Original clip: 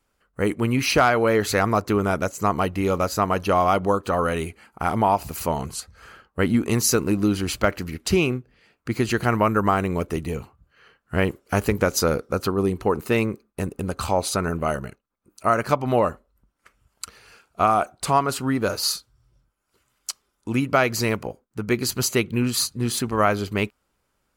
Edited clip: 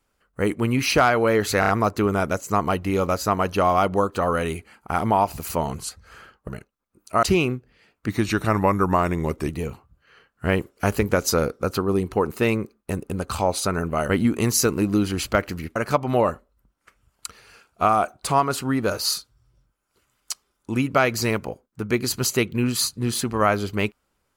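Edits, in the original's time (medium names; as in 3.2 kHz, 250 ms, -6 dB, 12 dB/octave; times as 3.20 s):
1.60 s: stutter 0.03 s, 4 plays
6.39–8.05 s: swap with 14.79–15.54 s
8.90–10.18 s: speed 91%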